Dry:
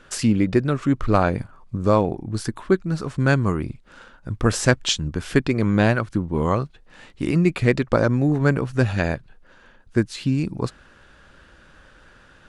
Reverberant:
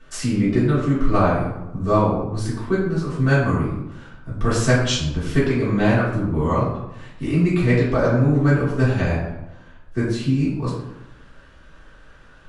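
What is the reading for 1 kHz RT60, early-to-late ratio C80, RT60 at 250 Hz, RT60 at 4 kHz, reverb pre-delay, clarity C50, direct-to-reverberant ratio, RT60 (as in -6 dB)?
0.95 s, 5.0 dB, 1.1 s, 0.55 s, 3 ms, 2.0 dB, -10.5 dB, 0.95 s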